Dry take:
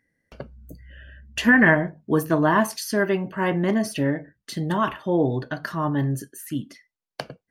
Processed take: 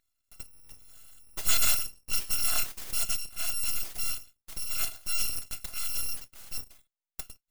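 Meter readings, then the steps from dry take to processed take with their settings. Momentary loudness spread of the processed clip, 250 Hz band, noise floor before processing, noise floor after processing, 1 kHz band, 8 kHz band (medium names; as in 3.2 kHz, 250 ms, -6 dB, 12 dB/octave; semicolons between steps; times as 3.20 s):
18 LU, -33.0 dB, under -85 dBFS, under -85 dBFS, -18.5 dB, +8.0 dB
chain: bit-reversed sample order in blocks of 256 samples; full-wave rectifier; trim -5.5 dB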